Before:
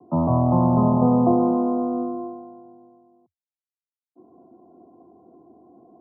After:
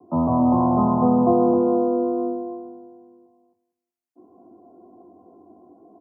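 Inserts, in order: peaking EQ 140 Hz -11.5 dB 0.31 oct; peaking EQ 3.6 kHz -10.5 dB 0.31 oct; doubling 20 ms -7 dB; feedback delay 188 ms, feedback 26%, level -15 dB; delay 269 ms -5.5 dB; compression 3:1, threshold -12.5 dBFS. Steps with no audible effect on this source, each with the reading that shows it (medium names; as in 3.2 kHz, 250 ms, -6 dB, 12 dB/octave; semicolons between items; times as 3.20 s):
peaking EQ 3.6 kHz: input has nothing above 1.1 kHz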